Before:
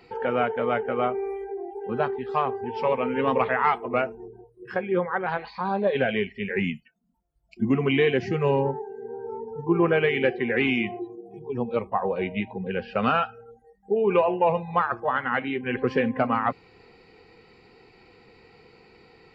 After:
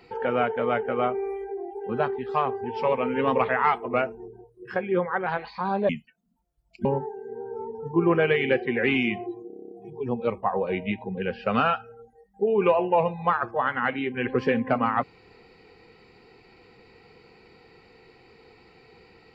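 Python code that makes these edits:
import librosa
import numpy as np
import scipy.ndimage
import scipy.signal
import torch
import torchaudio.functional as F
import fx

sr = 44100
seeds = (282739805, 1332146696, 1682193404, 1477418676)

y = fx.edit(x, sr, fx.cut(start_s=5.89, length_s=0.78),
    fx.cut(start_s=7.63, length_s=0.95),
    fx.stutter(start_s=11.2, slice_s=0.03, count=9), tone=tone)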